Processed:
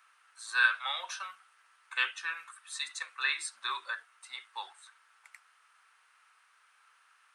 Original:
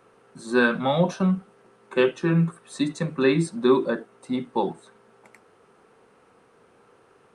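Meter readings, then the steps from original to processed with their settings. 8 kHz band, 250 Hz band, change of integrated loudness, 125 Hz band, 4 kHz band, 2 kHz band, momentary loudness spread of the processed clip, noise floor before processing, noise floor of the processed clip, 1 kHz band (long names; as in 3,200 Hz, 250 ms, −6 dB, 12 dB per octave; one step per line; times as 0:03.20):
0.0 dB, below −40 dB, −9.5 dB, below −40 dB, 0.0 dB, −1.0 dB, 18 LU, −59 dBFS, −67 dBFS, −9.0 dB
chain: high-pass filter 1,300 Hz 24 dB per octave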